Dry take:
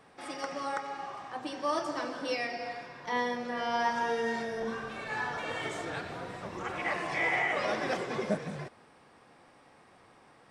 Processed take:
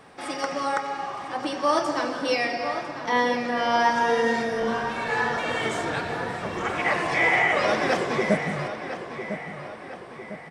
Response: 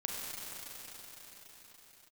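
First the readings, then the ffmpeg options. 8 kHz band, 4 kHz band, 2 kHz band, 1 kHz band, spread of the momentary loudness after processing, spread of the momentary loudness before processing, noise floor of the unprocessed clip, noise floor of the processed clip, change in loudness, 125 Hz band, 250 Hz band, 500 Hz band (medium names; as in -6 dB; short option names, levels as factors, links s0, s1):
+8.5 dB, +9.0 dB, +9.0 dB, +9.0 dB, 13 LU, 11 LU, -60 dBFS, -41 dBFS, +8.5 dB, +9.0 dB, +9.0 dB, +9.0 dB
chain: -filter_complex "[0:a]asplit=2[s0][s1];[s1]adelay=1002,lowpass=f=3900:p=1,volume=0.316,asplit=2[s2][s3];[s3]adelay=1002,lowpass=f=3900:p=1,volume=0.51,asplit=2[s4][s5];[s5]adelay=1002,lowpass=f=3900:p=1,volume=0.51,asplit=2[s6][s7];[s7]adelay=1002,lowpass=f=3900:p=1,volume=0.51,asplit=2[s8][s9];[s9]adelay=1002,lowpass=f=3900:p=1,volume=0.51,asplit=2[s10][s11];[s11]adelay=1002,lowpass=f=3900:p=1,volume=0.51[s12];[s0][s2][s4][s6][s8][s10][s12]amix=inputs=7:normalize=0,volume=2.66"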